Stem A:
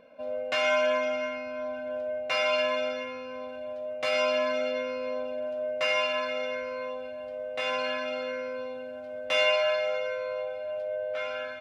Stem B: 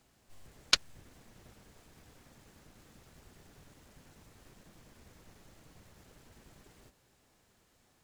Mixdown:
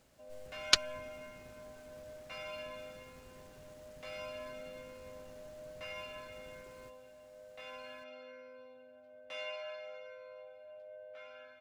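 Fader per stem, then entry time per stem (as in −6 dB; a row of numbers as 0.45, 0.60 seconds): −18.5, 0.0 decibels; 0.00, 0.00 seconds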